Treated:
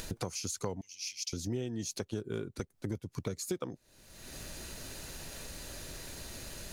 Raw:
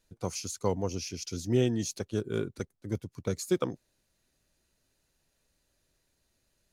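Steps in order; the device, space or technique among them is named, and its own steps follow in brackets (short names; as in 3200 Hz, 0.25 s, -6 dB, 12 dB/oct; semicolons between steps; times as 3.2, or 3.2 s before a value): upward and downward compression (upward compressor, threshold -29 dBFS; compressor 6:1, threshold -39 dBFS, peak gain reduction 17.5 dB); 0.81–1.33 elliptic high-pass 2100 Hz, stop band 40 dB; gain +5.5 dB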